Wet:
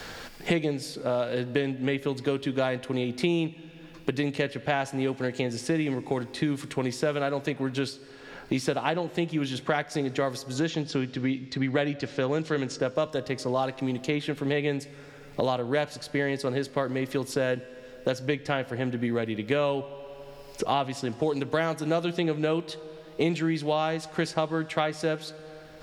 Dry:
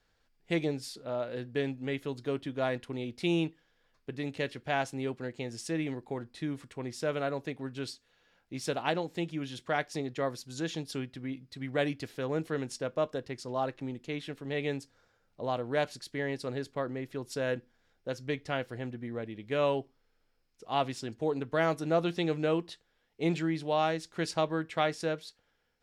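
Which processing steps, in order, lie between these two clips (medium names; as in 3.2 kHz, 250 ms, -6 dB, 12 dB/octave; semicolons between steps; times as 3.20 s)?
10.60–12.80 s: low-pass 7.1 kHz 24 dB/octave; reverberation RT60 1.4 s, pre-delay 19 ms, DRR 18 dB; three bands compressed up and down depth 100%; trim +4.5 dB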